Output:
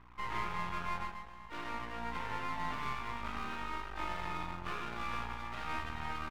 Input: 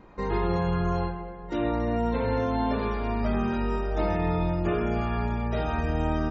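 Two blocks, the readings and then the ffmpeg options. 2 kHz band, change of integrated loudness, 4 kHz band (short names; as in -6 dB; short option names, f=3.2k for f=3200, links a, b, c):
-3.5 dB, -12.0 dB, -3.0 dB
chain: -af "aeval=exprs='val(0)+0.0112*(sin(2*PI*60*n/s)+sin(2*PI*2*60*n/s)/2+sin(2*PI*3*60*n/s)/3+sin(2*PI*4*60*n/s)/4+sin(2*PI*5*60*n/s)/5)':c=same,lowshelf=f=770:t=q:w=3:g=-11,aresample=8000,aresample=44100,aeval=exprs='max(val(0),0)':c=same,volume=-4dB"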